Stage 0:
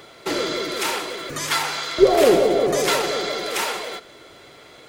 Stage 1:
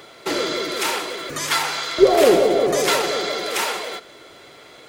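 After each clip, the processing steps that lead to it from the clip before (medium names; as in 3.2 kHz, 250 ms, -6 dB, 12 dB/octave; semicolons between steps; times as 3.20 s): bass shelf 140 Hz -6 dB; trim +1.5 dB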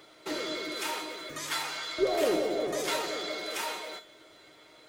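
feedback comb 310 Hz, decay 0.3 s, harmonics all, mix 80%; in parallel at -11 dB: saturation -29.5 dBFS, distortion -8 dB; on the sum: trim -2.5 dB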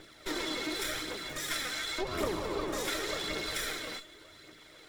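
comb filter that takes the minimum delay 0.55 ms; compression 6:1, threshold -33 dBFS, peak gain reduction 10.5 dB; phaser 0.89 Hz, delay 4.1 ms, feedback 38%; trim +2 dB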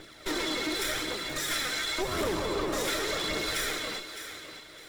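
overload inside the chain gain 30 dB; on a send: thinning echo 610 ms, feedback 23%, level -10 dB; on the sum: trim +4.5 dB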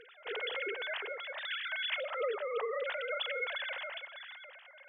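formants replaced by sine waves; on a send at -21.5 dB: reverberation RT60 0.70 s, pre-delay 3 ms; on the sum: trim -6 dB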